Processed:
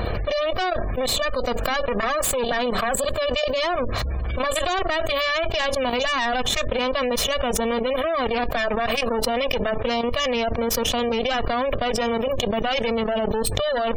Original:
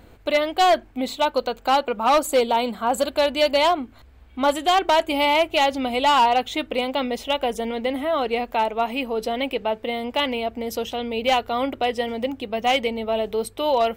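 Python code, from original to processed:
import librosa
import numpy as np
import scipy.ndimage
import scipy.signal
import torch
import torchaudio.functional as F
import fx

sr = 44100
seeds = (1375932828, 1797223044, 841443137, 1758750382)

y = fx.lower_of_two(x, sr, delay_ms=1.7)
y = fx.level_steps(y, sr, step_db=15)
y = fx.spec_gate(y, sr, threshold_db=-30, keep='strong')
y = fx.env_flatten(y, sr, amount_pct=100)
y = y * librosa.db_to_amplitude(-4.5)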